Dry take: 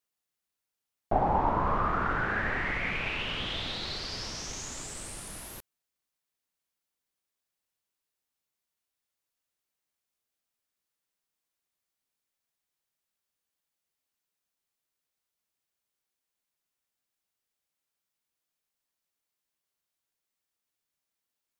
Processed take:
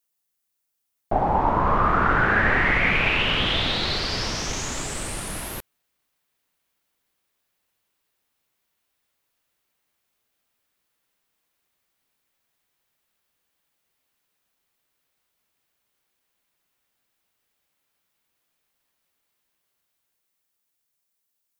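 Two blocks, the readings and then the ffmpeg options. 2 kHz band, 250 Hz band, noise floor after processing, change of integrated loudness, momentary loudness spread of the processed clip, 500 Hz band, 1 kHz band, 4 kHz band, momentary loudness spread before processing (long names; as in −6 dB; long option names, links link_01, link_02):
+11.0 dB, +8.5 dB, −77 dBFS, +9.0 dB, 12 LU, +7.5 dB, +7.5 dB, +10.5 dB, 13 LU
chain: -filter_complex "[0:a]highshelf=frequency=7600:gain=10.5,acrossover=split=3800[link_01][link_02];[link_01]dynaudnorm=framelen=210:gausssize=17:maxgain=11dB[link_03];[link_03][link_02]amix=inputs=2:normalize=0,volume=1.5dB"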